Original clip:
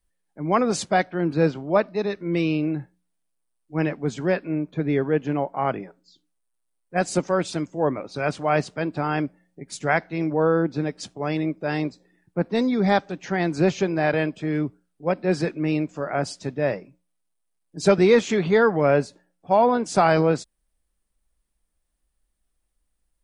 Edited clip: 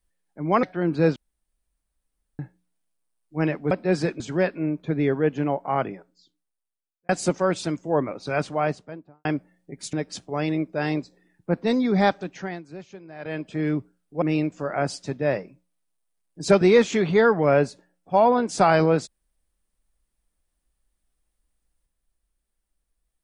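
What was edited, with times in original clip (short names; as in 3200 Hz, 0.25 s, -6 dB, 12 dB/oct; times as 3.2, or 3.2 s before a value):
0.63–1.01 cut
1.54–2.77 room tone
5.65–6.98 fade out
8.24–9.14 studio fade out
9.82–10.81 cut
13.08–14.49 dip -19.5 dB, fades 0.43 s
15.1–15.59 move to 4.09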